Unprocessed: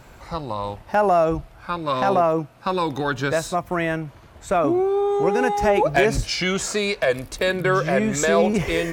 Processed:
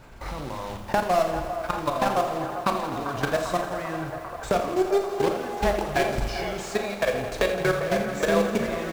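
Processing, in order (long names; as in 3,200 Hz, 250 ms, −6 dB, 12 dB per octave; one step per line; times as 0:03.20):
one scale factor per block 3 bits
0:01.00–0:02.07: hard clipping −13.5 dBFS, distortion −25 dB
downward compressor 4 to 1, threshold −28 dBFS, peak gain reduction 13.5 dB
far-end echo of a speakerphone 200 ms, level −29 dB
output level in coarse steps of 14 dB
high-shelf EQ 6,400 Hz −11.5 dB
delay with a band-pass on its return 395 ms, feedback 81%, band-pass 920 Hz, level −10 dB
on a send at −7 dB: convolution reverb RT60 0.30 s, pre-delay 35 ms
on the sum: feedback echo at a low word length 84 ms, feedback 80%, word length 9 bits, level −11 dB
level +7.5 dB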